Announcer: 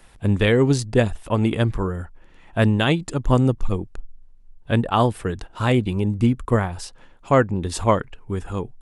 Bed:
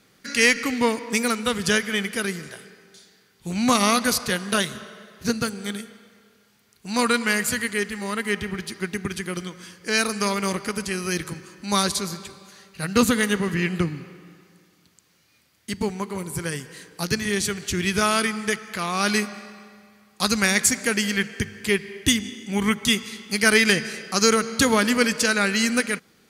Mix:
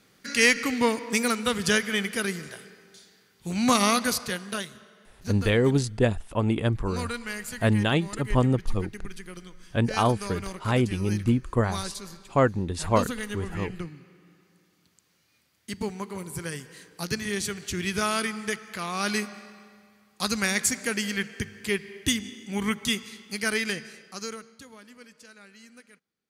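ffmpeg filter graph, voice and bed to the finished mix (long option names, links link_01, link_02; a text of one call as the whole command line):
ffmpeg -i stem1.wav -i stem2.wav -filter_complex "[0:a]adelay=5050,volume=-4.5dB[link_01];[1:a]volume=5dB,afade=type=out:start_time=3.8:duration=0.91:silence=0.298538,afade=type=in:start_time=14:duration=0.94:silence=0.446684,afade=type=out:start_time=22.76:duration=1.87:silence=0.0630957[link_02];[link_01][link_02]amix=inputs=2:normalize=0" out.wav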